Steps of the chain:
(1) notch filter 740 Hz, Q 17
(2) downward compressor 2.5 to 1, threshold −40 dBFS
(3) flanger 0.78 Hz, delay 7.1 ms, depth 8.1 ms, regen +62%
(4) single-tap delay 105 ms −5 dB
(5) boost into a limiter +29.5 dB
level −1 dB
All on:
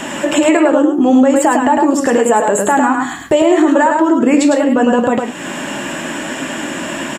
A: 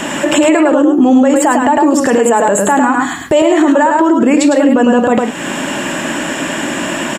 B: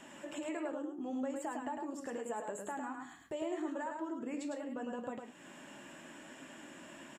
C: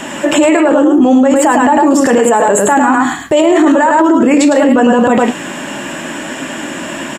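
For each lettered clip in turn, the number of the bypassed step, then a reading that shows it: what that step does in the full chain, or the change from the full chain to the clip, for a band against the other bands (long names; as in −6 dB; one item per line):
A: 3, 125 Hz band +1.5 dB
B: 5, change in crest factor +4.5 dB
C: 2, average gain reduction 8.5 dB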